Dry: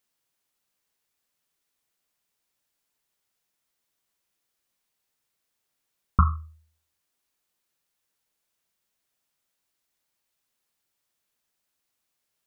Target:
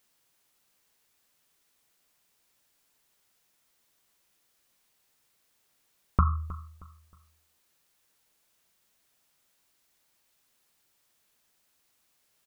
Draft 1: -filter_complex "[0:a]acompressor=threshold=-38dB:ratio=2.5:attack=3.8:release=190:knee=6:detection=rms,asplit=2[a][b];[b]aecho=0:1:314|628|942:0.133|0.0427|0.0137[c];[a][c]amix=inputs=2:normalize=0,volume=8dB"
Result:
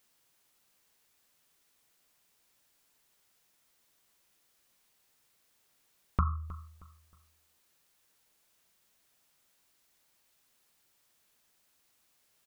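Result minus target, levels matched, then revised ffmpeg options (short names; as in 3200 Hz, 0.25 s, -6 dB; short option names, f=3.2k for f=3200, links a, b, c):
compressor: peak gain reduction +5.5 dB
-filter_complex "[0:a]acompressor=threshold=-29dB:ratio=2.5:attack=3.8:release=190:knee=6:detection=rms,asplit=2[a][b];[b]aecho=0:1:314|628|942:0.133|0.0427|0.0137[c];[a][c]amix=inputs=2:normalize=0,volume=8dB"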